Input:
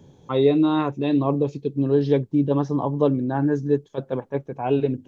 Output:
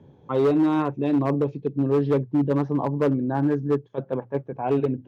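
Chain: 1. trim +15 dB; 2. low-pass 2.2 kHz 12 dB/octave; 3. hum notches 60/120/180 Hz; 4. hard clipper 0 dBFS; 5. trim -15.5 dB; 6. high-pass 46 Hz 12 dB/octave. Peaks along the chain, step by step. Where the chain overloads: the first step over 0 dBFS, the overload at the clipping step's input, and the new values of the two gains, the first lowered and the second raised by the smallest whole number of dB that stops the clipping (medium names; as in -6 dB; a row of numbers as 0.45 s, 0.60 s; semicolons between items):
+8.0 dBFS, +8.0 dBFS, +8.0 dBFS, 0.0 dBFS, -15.5 dBFS, -13.0 dBFS; step 1, 8.0 dB; step 1 +7 dB, step 5 -7.5 dB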